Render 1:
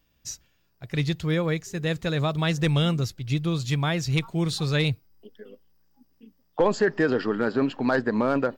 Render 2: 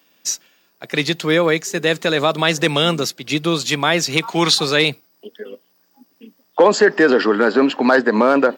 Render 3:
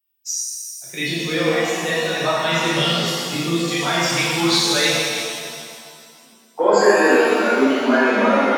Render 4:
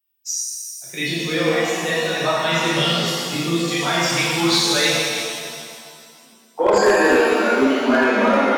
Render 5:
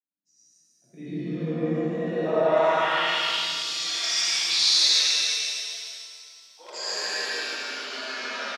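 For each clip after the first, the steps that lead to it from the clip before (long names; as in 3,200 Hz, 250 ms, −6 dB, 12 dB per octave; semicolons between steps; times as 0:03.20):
gain on a spectral selection 0:04.28–0:04.54, 690–6,900 Hz +8 dB; Bessel high-pass filter 320 Hz, order 8; in parallel at +1 dB: brickwall limiter −21.5 dBFS, peak gain reduction 9.5 dB; on the sum: level +7.5 dB
spectral dynamics exaggerated over time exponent 1.5; reverb reduction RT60 1.6 s; reverb with rising layers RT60 2.1 s, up +7 semitones, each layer −8 dB, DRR −10 dB; level −8.5 dB
hard clipping −9 dBFS, distortion −20 dB
band-pass filter sweep 220 Hz → 5,000 Hz, 0:01.87–0:03.44; single-tap delay 146 ms −3 dB; comb and all-pass reverb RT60 1.8 s, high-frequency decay 0.85×, pre-delay 35 ms, DRR −7 dB; level −5 dB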